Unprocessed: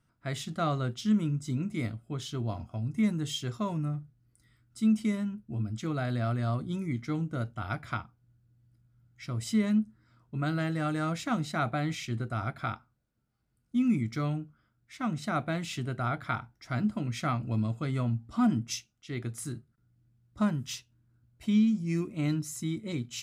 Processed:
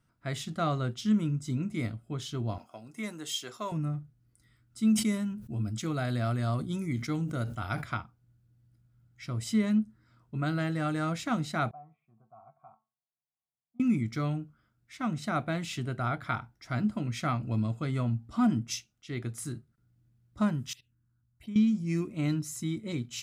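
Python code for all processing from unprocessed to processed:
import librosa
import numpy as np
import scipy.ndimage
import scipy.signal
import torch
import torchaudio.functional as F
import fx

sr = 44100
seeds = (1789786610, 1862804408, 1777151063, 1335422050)

y = fx.chain(x, sr, fx.highpass(hz=420.0, slope=12),
    fx.high_shelf(hz=7600.0, db=6.5), at=(2.58, 3.72))
y = fx.chain(y, sr, fx.high_shelf(hz=5700.0, db=9.0),
    fx.sustainer(db_per_s=95.0), at=(4.87, 7.84))
y = fx.chain(y, sr, fx.formant_cascade(vowel='a'),
    fx.peak_eq(hz=150.0, db=12.5, octaves=0.52),
    fx.comb_fb(f0_hz=220.0, decay_s=0.26, harmonics='all', damping=0.0, mix_pct=70), at=(11.71, 13.8))
y = fx.chain(y, sr, fx.level_steps(step_db=18),
    fx.env_phaser(low_hz=390.0, high_hz=4400.0, full_db=-46.0), at=(20.73, 21.56))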